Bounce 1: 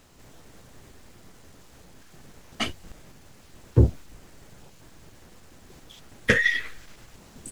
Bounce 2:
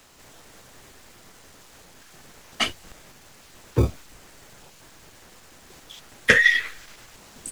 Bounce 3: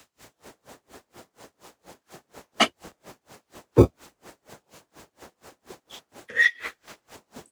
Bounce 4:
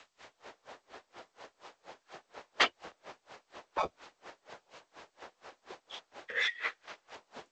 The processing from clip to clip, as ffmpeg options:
-filter_complex "[0:a]lowshelf=f=430:g=-10.5,acrossover=split=120|840|2100[a][b][c][d];[a]acrusher=samples=37:mix=1:aa=0.000001[e];[e][b][c][d]amix=inputs=4:normalize=0,volume=6dB"
-filter_complex "[0:a]acrossover=split=220|1100[a][b][c];[b]dynaudnorm=f=250:g=3:m=9dB[d];[a][d][c]amix=inputs=3:normalize=0,highpass=57,aeval=exprs='val(0)*pow(10,-33*(0.5-0.5*cos(2*PI*4.2*n/s))/20)':c=same,volume=2dB"
-filter_complex "[0:a]afftfilt=real='re*lt(hypot(re,im),0.355)':imag='im*lt(hypot(re,im),0.355)':win_size=1024:overlap=0.75,acrossover=split=440 5000:gain=0.2 1 0.0891[a][b][c];[a][b][c]amix=inputs=3:normalize=0" -ar 16000 -c:a g722

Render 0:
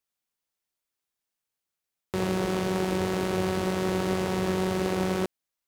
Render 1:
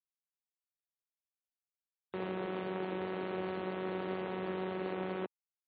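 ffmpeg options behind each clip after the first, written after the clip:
-filter_complex "[0:a]acrossover=split=180 4200:gain=0.158 1 0.0794[a][b][c];[a][b][c]amix=inputs=3:normalize=0,afftfilt=real='re*gte(hypot(re,im),0.00891)':imag='im*gte(hypot(re,im),0.00891)':win_size=1024:overlap=0.75,volume=-9dB"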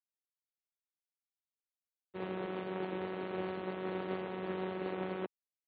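-af "agate=range=-33dB:threshold=-32dB:ratio=3:detection=peak,volume=3.5dB"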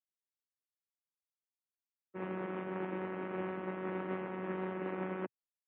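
-af "afftdn=nr=14:nf=-54,highpass=f=110:w=0.5412,highpass=f=110:w=1.3066,equalizer=f=130:t=q:w=4:g=-5,equalizer=f=440:t=q:w=4:g=-7,equalizer=f=700:t=q:w=4:g=-5,lowpass=f=2.5k:w=0.5412,lowpass=f=2.5k:w=1.3066,volume=2dB"

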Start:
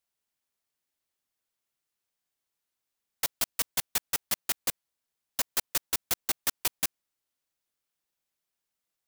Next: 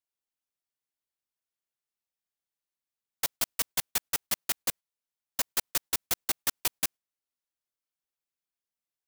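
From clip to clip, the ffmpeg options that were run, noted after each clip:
-af "agate=range=-9dB:threshold=-40dB:ratio=16:detection=peak"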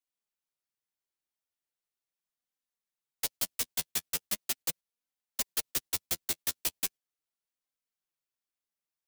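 -filter_complex "[0:a]acrossover=split=170|630|2100[a][b][c][d];[c]acompressor=threshold=-48dB:ratio=6[e];[a][b][e][d]amix=inputs=4:normalize=0,flanger=delay=3.8:depth=8.8:regen=15:speed=0.39:shape=sinusoidal,volume=1.5dB"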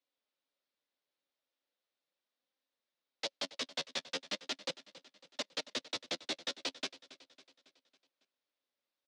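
-af "asoftclip=type=tanh:threshold=-28.5dB,highpass=240,equalizer=f=270:t=q:w=4:g=8,equalizer=f=550:t=q:w=4:g=10,equalizer=f=3.7k:t=q:w=4:g=4,lowpass=f=5.1k:w=0.5412,lowpass=f=5.1k:w=1.3066,aecho=1:1:276|552|828|1104|1380:0.133|0.0707|0.0375|0.0199|0.0105,volume=3.5dB"

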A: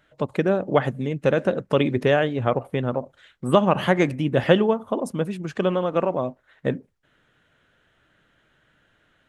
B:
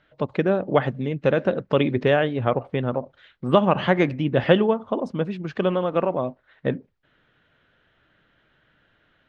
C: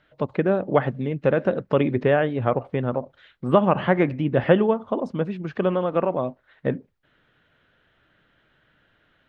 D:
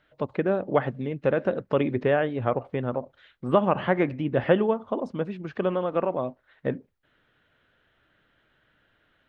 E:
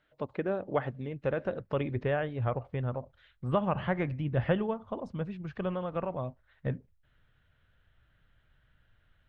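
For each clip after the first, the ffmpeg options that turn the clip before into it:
-af "lowpass=f=4.8k:w=0.5412,lowpass=f=4.8k:w=1.3066"
-filter_complex "[0:a]acrossover=split=2600[a][b];[b]acompressor=threshold=-51dB:ratio=4:attack=1:release=60[c];[a][c]amix=inputs=2:normalize=0"
-af "equalizer=f=160:w=1.9:g=-3,volume=-3dB"
-af "asubboost=boost=9.5:cutoff=100,volume=-6.5dB"

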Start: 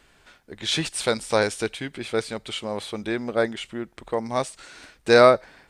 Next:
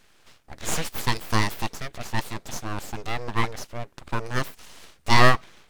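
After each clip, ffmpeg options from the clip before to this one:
-af "aeval=exprs='abs(val(0))':c=same,volume=1dB"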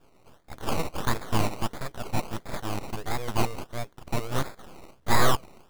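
-af "acrusher=samples=21:mix=1:aa=0.000001:lfo=1:lforange=12.6:lforate=1.5,asoftclip=type=tanh:threshold=-10.5dB"

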